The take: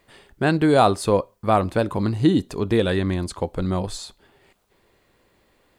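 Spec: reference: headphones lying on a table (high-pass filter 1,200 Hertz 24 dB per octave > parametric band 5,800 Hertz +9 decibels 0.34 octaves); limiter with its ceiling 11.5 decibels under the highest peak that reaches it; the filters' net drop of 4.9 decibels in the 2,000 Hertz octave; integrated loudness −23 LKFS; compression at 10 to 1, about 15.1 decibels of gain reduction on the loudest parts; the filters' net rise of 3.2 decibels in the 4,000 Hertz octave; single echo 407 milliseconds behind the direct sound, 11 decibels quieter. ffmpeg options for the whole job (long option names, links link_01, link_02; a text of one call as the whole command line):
ffmpeg -i in.wav -af "equalizer=frequency=2000:width_type=o:gain=-7.5,equalizer=frequency=4000:width_type=o:gain=4.5,acompressor=threshold=-28dB:ratio=10,alimiter=level_in=5.5dB:limit=-24dB:level=0:latency=1,volume=-5.5dB,highpass=frequency=1200:width=0.5412,highpass=frequency=1200:width=1.3066,equalizer=frequency=5800:width_type=o:width=0.34:gain=9,aecho=1:1:407:0.282,volume=21.5dB" out.wav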